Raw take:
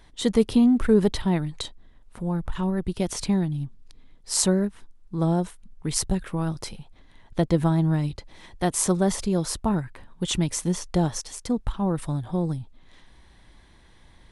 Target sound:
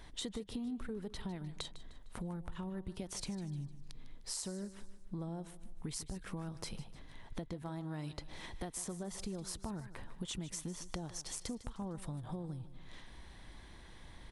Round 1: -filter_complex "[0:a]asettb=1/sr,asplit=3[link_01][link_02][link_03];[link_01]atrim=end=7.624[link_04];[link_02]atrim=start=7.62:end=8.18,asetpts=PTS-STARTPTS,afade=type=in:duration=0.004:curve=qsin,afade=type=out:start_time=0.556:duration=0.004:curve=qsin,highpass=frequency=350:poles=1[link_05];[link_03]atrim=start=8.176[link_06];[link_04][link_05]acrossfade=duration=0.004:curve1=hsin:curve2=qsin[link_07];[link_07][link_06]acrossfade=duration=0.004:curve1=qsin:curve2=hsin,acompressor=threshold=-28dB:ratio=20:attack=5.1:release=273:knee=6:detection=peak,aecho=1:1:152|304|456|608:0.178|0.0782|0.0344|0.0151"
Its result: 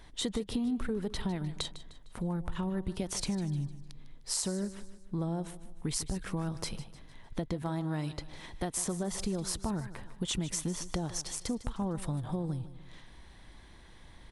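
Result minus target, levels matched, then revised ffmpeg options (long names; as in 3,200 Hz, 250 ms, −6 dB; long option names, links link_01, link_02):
downward compressor: peak gain reduction −8.5 dB
-filter_complex "[0:a]asettb=1/sr,asplit=3[link_01][link_02][link_03];[link_01]atrim=end=7.624[link_04];[link_02]atrim=start=7.62:end=8.18,asetpts=PTS-STARTPTS,afade=type=in:duration=0.004:curve=qsin,afade=type=out:start_time=0.556:duration=0.004:curve=qsin,highpass=frequency=350:poles=1[link_05];[link_03]atrim=start=8.176[link_06];[link_04][link_05]acrossfade=duration=0.004:curve1=hsin:curve2=qsin[link_07];[link_07][link_06]acrossfade=duration=0.004:curve1=qsin:curve2=hsin,acompressor=threshold=-37dB:ratio=20:attack=5.1:release=273:knee=6:detection=peak,aecho=1:1:152|304|456|608:0.178|0.0782|0.0344|0.0151"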